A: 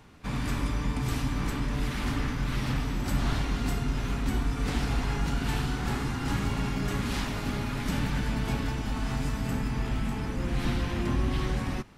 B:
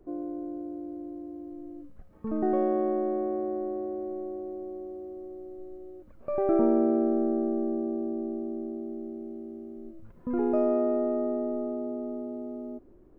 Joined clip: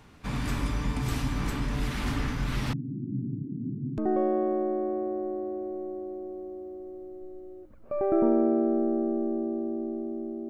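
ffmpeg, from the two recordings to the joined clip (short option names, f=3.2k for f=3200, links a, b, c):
-filter_complex "[0:a]asettb=1/sr,asplit=3[a][b][c];[a]atrim=end=2.734[d];[b]atrim=start=2.73:end=3.98,asetpts=PTS-STARTPTS,afade=t=in:d=0.004:c=qsin,afade=t=out:st=1.246:d=0.004:c=qsin,asuperpass=centerf=200:order=12:qfactor=0.83[e];[c]atrim=start=3.976[f];[d][e]acrossfade=d=0.004:c1=hsin:c2=qsin[g];[g][f]acrossfade=d=0.004:c1=qsin:c2=hsin,apad=whole_dur=10.49,atrim=end=10.49,atrim=end=3.982[h];[1:a]atrim=start=2.348:end=8.86[i];[h][i]acrossfade=d=0.004:c1=hsin:c2=hsin"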